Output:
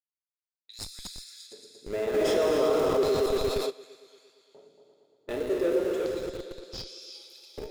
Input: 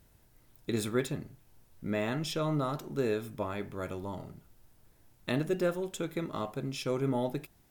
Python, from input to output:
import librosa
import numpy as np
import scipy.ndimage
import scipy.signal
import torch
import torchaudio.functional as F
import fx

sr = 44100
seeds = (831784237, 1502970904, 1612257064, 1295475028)

p1 = fx.low_shelf(x, sr, hz=90.0, db=2.0)
p2 = fx.env_lowpass(p1, sr, base_hz=420.0, full_db=-30.0)
p3 = fx.high_shelf(p2, sr, hz=4300.0, db=3.0)
p4 = fx.rev_gated(p3, sr, seeds[0], gate_ms=420, shape='flat', drr_db=-1.0)
p5 = fx.filter_lfo_highpass(p4, sr, shape='square', hz=0.33, low_hz=430.0, high_hz=4600.0, q=6.8)
p6 = fx.vibrato(p5, sr, rate_hz=2.6, depth_cents=42.0)
p7 = fx.echo_opening(p6, sr, ms=115, hz=400, octaves=2, feedback_pct=70, wet_db=-3)
p8 = fx.schmitt(p7, sr, flips_db=-25.0)
p9 = p7 + (p8 * librosa.db_to_amplitude(-8.0))
p10 = fx.env_flatten(p9, sr, amount_pct=70, at=(2.13, 3.69), fade=0.02)
y = p10 * librosa.db_to_amplitude(-8.5)